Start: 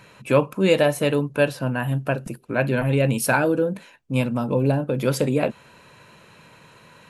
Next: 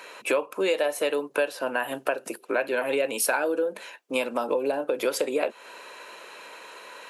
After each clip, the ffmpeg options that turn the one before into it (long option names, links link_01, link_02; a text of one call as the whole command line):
ffmpeg -i in.wav -af "highpass=frequency=370:width=0.5412,highpass=frequency=370:width=1.3066,acompressor=threshold=-30dB:ratio=5,volume=7dB" out.wav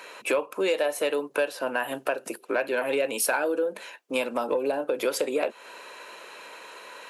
ffmpeg -i in.wav -af "asoftclip=type=tanh:threshold=-12dB" out.wav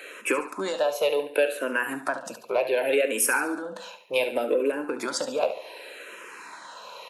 ffmpeg -i in.wav -filter_complex "[0:a]asplit=2[link_01][link_02];[link_02]aecho=0:1:71|142|213|284|355:0.282|0.124|0.0546|0.024|0.0106[link_03];[link_01][link_03]amix=inputs=2:normalize=0,asplit=2[link_04][link_05];[link_05]afreqshift=-0.67[link_06];[link_04][link_06]amix=inputs=2:normalize=1,volume=4dB" out.wav